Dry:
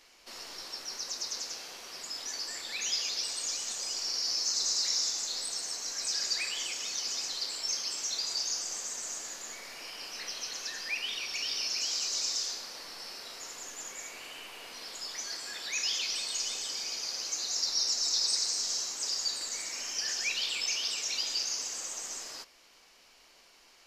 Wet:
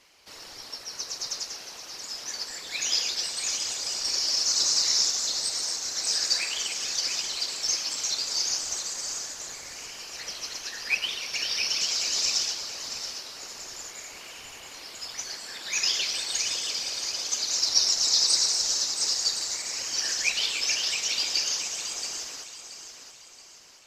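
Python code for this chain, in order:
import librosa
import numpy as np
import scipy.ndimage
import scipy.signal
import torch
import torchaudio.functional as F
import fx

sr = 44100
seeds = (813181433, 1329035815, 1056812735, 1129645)

y = fx.whisperise(x, sr, seeds[0])
y = fx.echo_feedback(y, sr, ms=677, feedback_pct=43, wet_db=-7.0)
y = fx.upward_expand(y, sr, threshold_db=-41.0, expansion=1.5)
y = F.gain(torch.from_numpy(y), 8.0).numpy()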